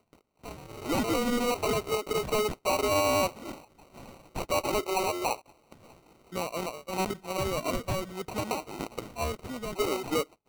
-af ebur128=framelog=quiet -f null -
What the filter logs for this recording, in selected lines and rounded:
Integrated loudness:
  I:         -30.3 LUFS
  Threshold: -41.2 LUFS
Loudness range:
  LRA:         5.4 LU
  Threshold: -51.1 LUFS
  LRA low:   -33.8 LUFS
  LRA high:  -28.4 LUFS